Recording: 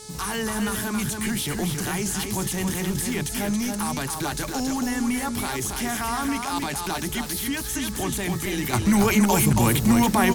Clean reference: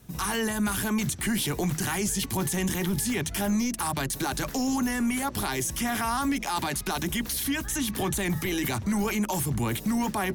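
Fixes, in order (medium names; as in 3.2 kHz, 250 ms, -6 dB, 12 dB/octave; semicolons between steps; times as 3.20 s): de-hum 430.5 Hz, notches 10; noise print and reduce 6 dB; inverse comb 276 ms -5 dB; trim 0 dB, from 8.73 s -7.5 dB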